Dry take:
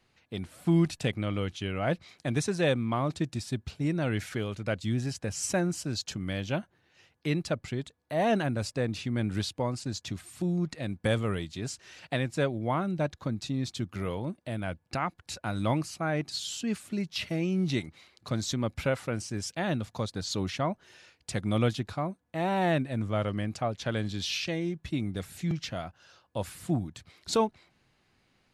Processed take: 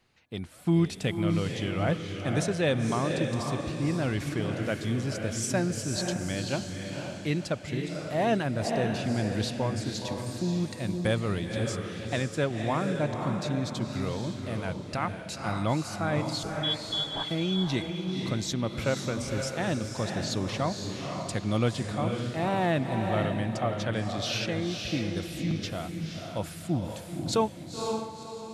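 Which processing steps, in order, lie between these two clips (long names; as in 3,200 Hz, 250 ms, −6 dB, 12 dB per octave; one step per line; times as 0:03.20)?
0:16.43–0:17.25: voice inversion scrambler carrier 3,600 Hz
feedback delay with all-pass diffusion 514 ms, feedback 41%, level −4 dB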